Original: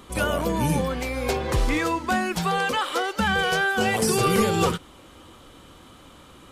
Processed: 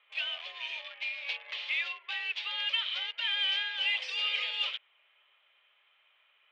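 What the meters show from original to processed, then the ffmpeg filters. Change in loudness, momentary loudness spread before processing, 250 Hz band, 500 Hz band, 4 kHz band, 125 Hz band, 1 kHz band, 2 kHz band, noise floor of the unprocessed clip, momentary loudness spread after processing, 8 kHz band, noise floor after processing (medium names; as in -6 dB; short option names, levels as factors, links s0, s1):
-8.0 dB, 6 LU, under -40 dB, -31.0 dB, +1.5 dB, under -40 dB, -23.0 dB, -7.5 dB, -49 dBFS, 8 LU, under -25 dB, -69 dBFS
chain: -filter_complex "[0:a]aderivative,acrossover=split=2100[s0][s1];[s1]acrusher=bits=6:mix=0:aa=0.000001[s2];[s0][s2]amix=inputs=2:normalize=0,highpass=f=440:t=q:w=0.5412,highpass=f=440:t=q:w=1.307,lowpass=f=3000:t=q:w=0.5176,lowpass=f=3000:t=q:w=0.7071,lowpass=f=3000:t=q:w=1.932,afreqshift=71,aexciter=amount=6.4:drive=7.3:freq=2100,volume=0.562"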